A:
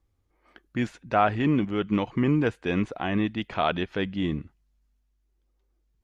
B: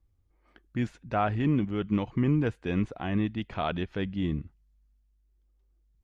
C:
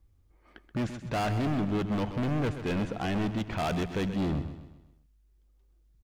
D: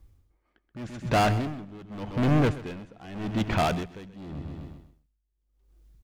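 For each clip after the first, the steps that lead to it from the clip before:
low shelf 180 Hz +11 dB; gain -6.5 dB
overloaded stage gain 32.5 dB; on a send: feedback echo 0.129 s, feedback 44%, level -11 dB; on the sum: gain +5.5 dB
dB-linear tremolo 0.85 Hz, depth 23 dB; gain +8 dB

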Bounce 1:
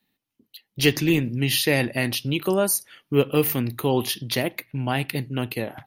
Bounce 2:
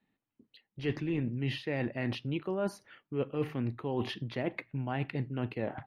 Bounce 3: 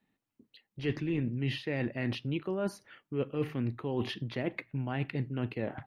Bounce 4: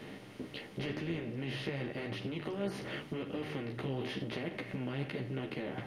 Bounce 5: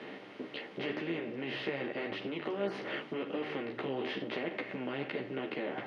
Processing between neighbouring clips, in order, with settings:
LPF 1900 Hz 12 dB/oct; reverse; compressor 6:1, threshold -28 dBFS, peak gain reduction 14 dB; reverse; gain -1.5 dB
dynamic EQ 810 Hz, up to -4 dB, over -46 dBFS, Q 1.3; gain +1 dB
per-bin compression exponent 0.4; compressor, threshold -32 dBFS, peak gain reduction 10 dB; chorus voices 2, 0.9 Hz, delay 13 ms, depth 2.9 ms; gain +1 dB
BPF 300–3300 Hz; gain +4.5 dB

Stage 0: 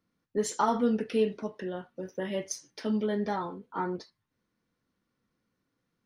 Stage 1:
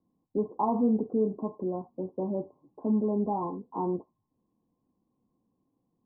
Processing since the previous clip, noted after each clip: in parallel at +1 dB: limiter -26 dBFS, peak gain reduction 11 dB; on the sum: rippled Chebyshev low-pass 1100 Hz, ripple 6 dB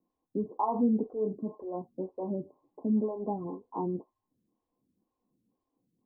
photocell phaser 2 Hz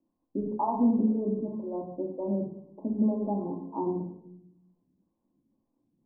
LPF 1100 Hz 12 dB/oct; shoebox room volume 2000 m³, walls furnished, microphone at 2.6 m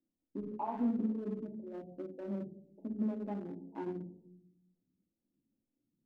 Wiener smoothing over 41 samples; gain -8.5 dB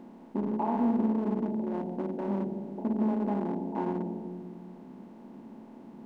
per-bin compression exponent 0.4; gain +3.5 dB

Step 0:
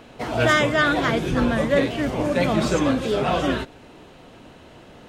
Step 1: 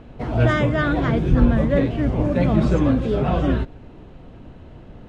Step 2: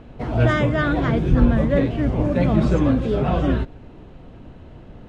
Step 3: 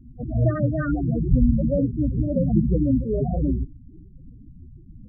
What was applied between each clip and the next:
RIAA curve playback; gain -3.5 dB
nothing audible
rotary speaker horn 8 Hz, later 1.1 Hz, at 0.98; loudest bins only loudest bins 8

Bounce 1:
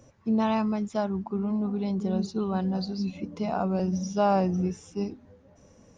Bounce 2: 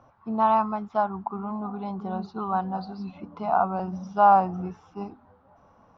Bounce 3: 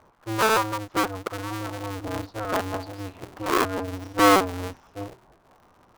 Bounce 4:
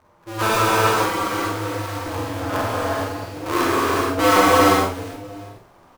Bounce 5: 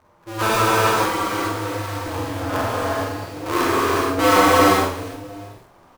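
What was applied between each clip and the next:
LPF 4200 Hz 24 dB/oct; band shelf 1000 Hz +15.5 dB 1.3 oct; gain -5.5 dB
cycle switcher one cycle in 2, inverted
doubler 47 ms -5 dB; non-linear reverb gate 0.5 s flat, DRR -7 dB; gain -3 dB
lo-fi delay 80 ms, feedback 55%, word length 7-bit, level -13.5 dB

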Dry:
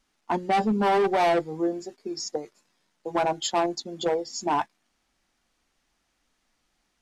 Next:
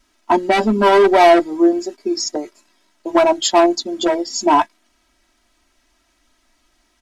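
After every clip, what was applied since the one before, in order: comb 3.1 ms, depth 95%; gain +8 dB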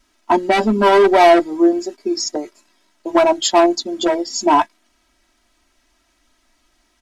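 nothing audible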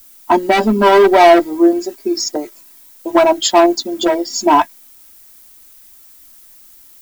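added noise violet -46 dBFS; gain +2.5 dB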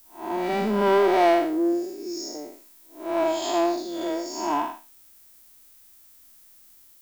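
time blur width 0.202 s; gain -8 dB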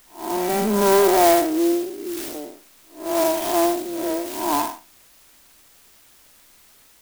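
clock jitter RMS 0.073 ms; gain +3.5 dB

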